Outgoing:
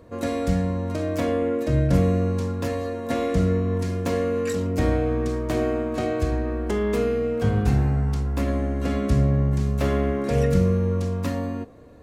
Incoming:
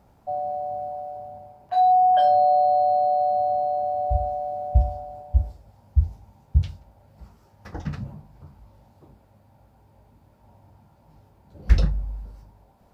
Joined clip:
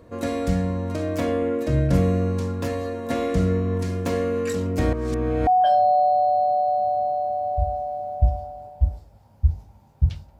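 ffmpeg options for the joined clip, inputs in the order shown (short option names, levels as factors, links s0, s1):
-filter_complex "[0:a]apad=whole_dur=10.39,atrim=end=10.39,asplit=2[s0][s1];[s0]atrim=end=4.932[s2];[s1]atrim=start=4.928:end=5.472,asetpts=PTS-STARTPTS,areverse[s3];[1:a]atrim=start=1.998:end=6.92[s4];[s2][s3]acrossfade=d=0.004:c1=hsin:c2=hsin[s5];[s5][s4]acrossfade=d=0.004:c1=hsin:c2=hsin"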